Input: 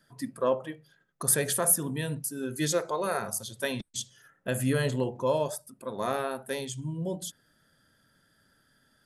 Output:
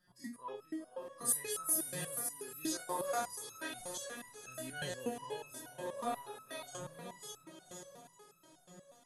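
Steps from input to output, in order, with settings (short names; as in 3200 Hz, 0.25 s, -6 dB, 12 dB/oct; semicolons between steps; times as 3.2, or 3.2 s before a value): spectral dilation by 60 ms; diffused feedback echo 0.495 s, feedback 61%, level -8.5 dB; stepped resonator 8.3 Hz 180–1300 Hz; gain +1.5 dB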